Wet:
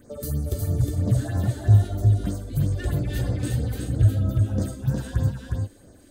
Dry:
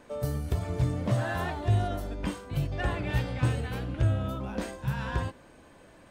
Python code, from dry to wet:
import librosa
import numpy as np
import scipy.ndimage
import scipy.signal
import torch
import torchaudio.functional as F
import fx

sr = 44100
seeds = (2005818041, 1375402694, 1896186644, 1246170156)

p1 = fx.high_shelf(x, sr, hz=6400.0, db=10.0)
p2 = fx.phaser_stages(p1, sr, stages=4, low_hz=110.0, high_hz=3300.0, hz=3.1, feedback_pct=25)
p3 = fx.graphic_eq_15(p2, sr, hz=(100, 250, 1000, 2500), db=(9, 3, -9, -10))
p4 = fx.rider(p3, sr, range_db=4, speed_s=2.0)
p5 = fx.notch(p4, sr, hz=5500.0, q=16.0)
y = p5 + fx.echo_single(p5, sr, ms=361, db=-3.5, dry=0)